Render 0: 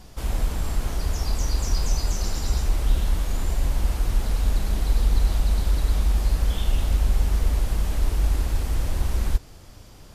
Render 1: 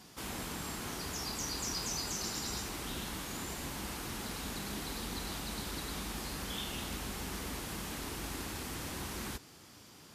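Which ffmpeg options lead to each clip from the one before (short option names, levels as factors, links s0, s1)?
-af "highpass=200,equalizer=f=590:w=1.6:g=-8,volume=0.75"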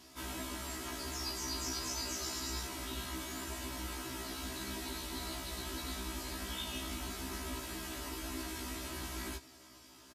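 -af "aecho=1:1:3.1:0.92,afftfilt=real='re*1.73*eq(mod(b,3),0)':imag='im*1.73*eq(mod(b,3),0)':win_size=2048:overlap=0.75,volume=0.841"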